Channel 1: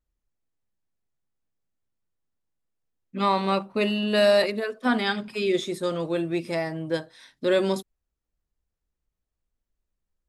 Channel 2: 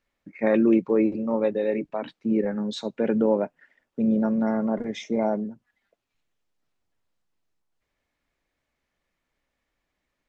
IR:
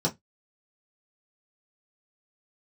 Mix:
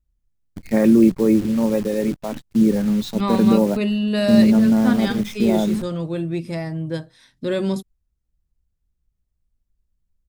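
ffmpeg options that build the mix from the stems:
-filter_complex "[0:a]volume=0.668[s0];[1:a]acrusher=bits=7:dc=4:mix=0:aa=0.000001,adelay=300,volume=1[s1];[s0][s1]amix=inputs=2:normalize=0,bass=f=250:g=15,treble=f=4000:g=3"

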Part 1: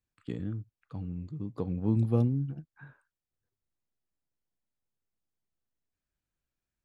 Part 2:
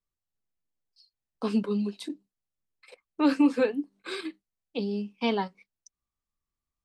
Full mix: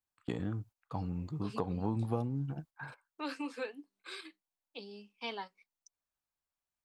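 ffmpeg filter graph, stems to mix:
-filter_complex "[0:a]equalizer=f=870:w=1:g=14.5,agate=range=0.224:threshold=0.00316:ratio=16:detection=peak,highshelf=f=2600:g=10,volume=0.944,asplit=2[s0][s1];[1:a]highpass=f=1100:p=1,volume=0.447[s2];[s1]apad=whole_len=301655[s3];[s2][s3]sidechaincompress=threshold=0.0224:ratio=8:attack=41:release=266[s4];[s0][s4]amix=inputs=2:normalize=0,acompressor=threshold=0.0282:ratio=4"

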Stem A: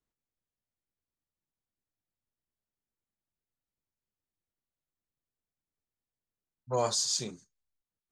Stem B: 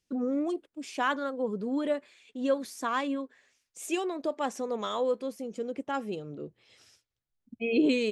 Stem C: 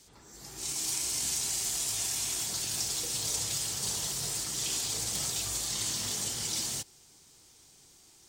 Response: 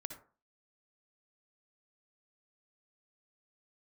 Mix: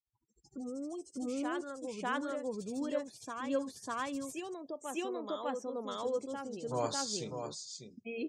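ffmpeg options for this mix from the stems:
-filter_complex "[0:a]equalizer=f=6200:t=o:w=1.2:g=-3.5,volume=0.562,asplit=2[s0][s1];[s1]volume=0.422[s2];[1:a]adelay=450,volume=0.631,asplit=2[s3][s4];[s4]volume=0.668[s5];[2:a]alimiter=level_in=1.33:limit=0.0631:level=0:latency=1:release=18,volume=0.75,tremolo=f=13:d=0.89,volume=0.316,asplit=3[s6][s7][s8];[s6]atrim=end=4.54,asetpts=PTS-STARTPTS,afade=t=out:st=4.536:d=0.004:c=hsin[s9];[s7]atrim=start=4.54:end=5.91,asetpts=PTS-STARTPTS,volume=0[s10];[s8]atrim=start=5.91,asetpts=PTS-STARTPTS,afade=t=in:d=0.004:c=hsin[s11];[s9][s10][s11]concat=n=3:v=0:a=1,asplit=2[s12][s13];[s13]volume=0.112[s14];[s3][s12]amix=inputs=2:normalize=0,acompressor=threshold=0.00251:ratio=1.5,volume=1[s15];[s2][s5][s14]amix=inputs=3:normalize=0,aecho=0:1:598:1[s16];[s0][s15][s16]amix=inputs=3:normalize=0,afftdn=nr=36:nf=-56"

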